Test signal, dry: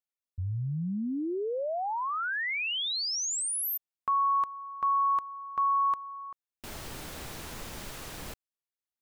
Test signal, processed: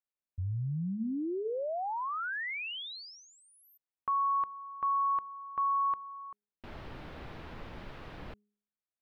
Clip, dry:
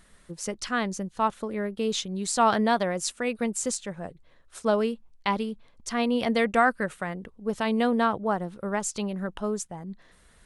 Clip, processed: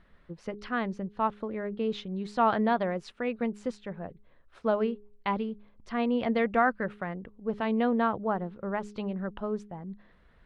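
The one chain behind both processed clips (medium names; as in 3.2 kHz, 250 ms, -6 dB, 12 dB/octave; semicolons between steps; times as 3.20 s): distance through air 360 m; de-hum 207.3 Hz, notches 2; trim -1.5 dB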